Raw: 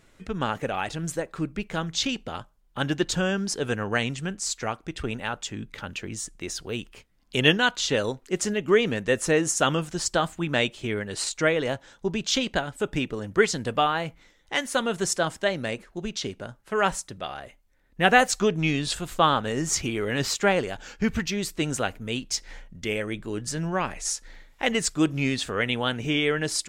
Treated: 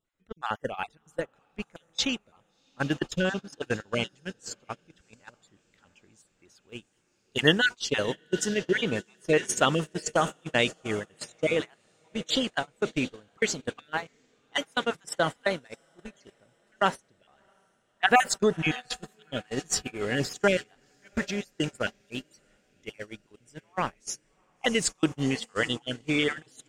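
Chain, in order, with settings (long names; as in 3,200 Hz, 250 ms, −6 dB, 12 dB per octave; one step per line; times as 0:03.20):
time-frequency cells dropped at random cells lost 30%
0:17.00–0:18.10: high-frequency loss of the air 70 metres
on a send: feedback delay with all-pass diffusion 694 ms, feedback 63%, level −13 dB
on the sum: noise gate −27 dBFS, range −25 dB
low-shelf EQ 150 Hz −3 dB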